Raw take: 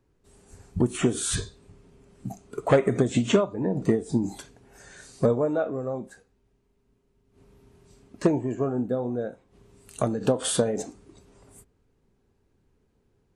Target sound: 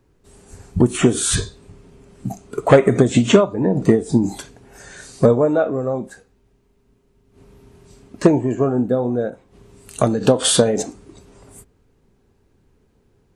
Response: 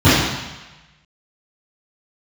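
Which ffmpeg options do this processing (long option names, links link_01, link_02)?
-filter_complex "[0:a]asettb=1/sr,asplit=3[link_01][link_02][link_03];[link_01]atrim=end=9.304[link_04];[link_02]atrim=start=9.3:end=10.83,asetpts=PTS-STARTPTS,afade=type=in:duration=0.004:curve=qsin,afade=type=out:start_time=1.526:duration=0.004:curve=qsin,adynamicequalizer=threshold=0.00562:dfrequency=4200:dqfactor=0.89:tfrequency=4200:tqfactor=0.89:attack=5:release=100:ratio=0.375:range=2.5:mode=boostabove:tftype=bell[link_05];[link_03]atrim=start=10.826[link_06];[link_04][link_05]acrossfade=duration=0.004:curve1=hsin:curve2=qsin[link_07];[link_07][link_06]acrossfade=duration=0.004:curve1=qsin:curve2=hsin,volume=8.5dB"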